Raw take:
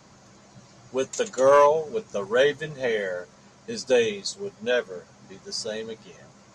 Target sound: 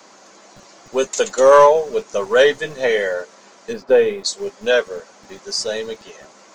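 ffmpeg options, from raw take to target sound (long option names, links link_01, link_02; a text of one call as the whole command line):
ffmpeg -i in.wav -filter_complex "[0:a]asplit=3[link_01][link_02][link_03];[link_01]afade=type=out:start_time=3.72:duration=0.02[link_04];[link_02]lowpass=1600,afade=type=in:start_time=3.72:duration=0.02,afade=type=out:start_time=4.23:duration=0.02[link_05];[link_03]afade=type=in:start_time=4.23:duration=0.02[link_06];[link_04][link_05][link_06]amix=inputs=3:normalize=0,acrossover=split=260[link_07][link_08];[link_07]acrusher=bits=5:dc=4:mix=0:aa=0.000001[link_09];[link_08]acontrast=68[link_10];[link_09][link_10]amix=inputs=2:normalize=0,volume=2dB" out.wav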